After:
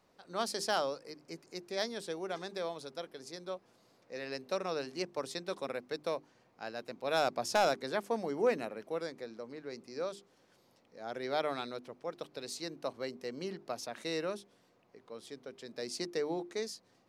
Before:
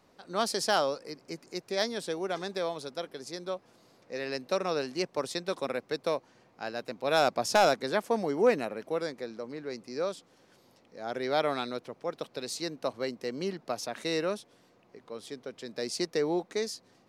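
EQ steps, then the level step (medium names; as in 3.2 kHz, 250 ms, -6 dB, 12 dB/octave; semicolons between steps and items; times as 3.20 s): hum notches 50/100/150/200/250/300/350/400 Hz; -5.5 dB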